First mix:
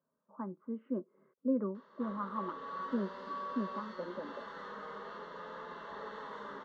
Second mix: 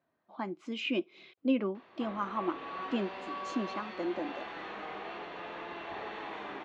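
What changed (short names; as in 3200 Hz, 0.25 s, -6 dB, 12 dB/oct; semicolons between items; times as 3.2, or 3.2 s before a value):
speech: remove Bessel low-pass 1000 Hz, order 8; master: remove fixed phaser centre 490 Hz, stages 8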